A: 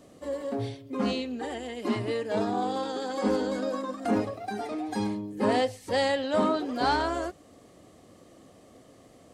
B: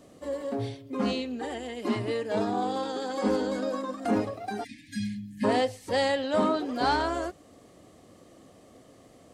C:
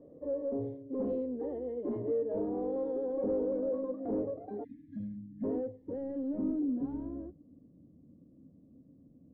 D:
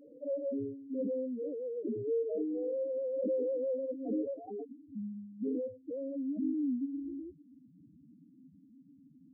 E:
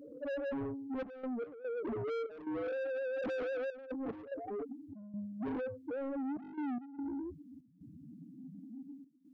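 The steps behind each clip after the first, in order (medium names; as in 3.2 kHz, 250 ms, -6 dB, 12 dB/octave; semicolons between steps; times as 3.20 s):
spectral selection erased 4.64–5.44 s, 280–1600 Hz
rippled EQ curve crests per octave 1.1, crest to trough 6 dB; saturation -26.5 dBFS, distortion -9 dB; low-pass sweep 470 Hz -> 220 Hz, 4.74–7.69 s; trim -5.5 dB
spectral contrast enhancement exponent 3.5
high-pass sweep 82 Hz -> 420 Hz, 7.83–9.25 s; saturation -39.5 dBFS, distortion -8 dB; trance gate "xxxxx.x.xxx.x" 73 bpm -12 dB; trim +4.5 dB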